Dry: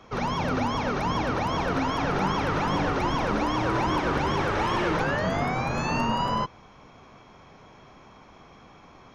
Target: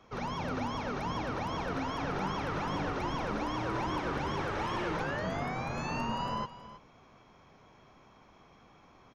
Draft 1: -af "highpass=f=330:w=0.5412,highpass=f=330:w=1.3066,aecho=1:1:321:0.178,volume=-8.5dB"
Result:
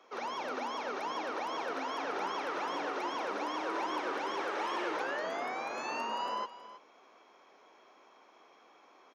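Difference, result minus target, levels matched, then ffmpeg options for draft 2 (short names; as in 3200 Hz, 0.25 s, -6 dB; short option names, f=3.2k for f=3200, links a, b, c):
250 Hz band -6.0 dB
-af "aecho=1:1:321:0.178,volume=-8.5dB"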